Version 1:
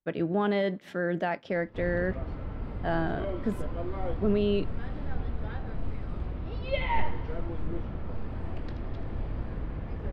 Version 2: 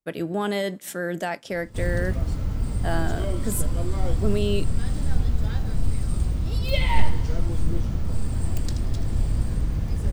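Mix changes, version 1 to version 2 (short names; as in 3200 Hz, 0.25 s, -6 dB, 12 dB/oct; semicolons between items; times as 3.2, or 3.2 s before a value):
background: add tone controls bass +11 dB, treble +11 dB; master: remove air absorption 310 m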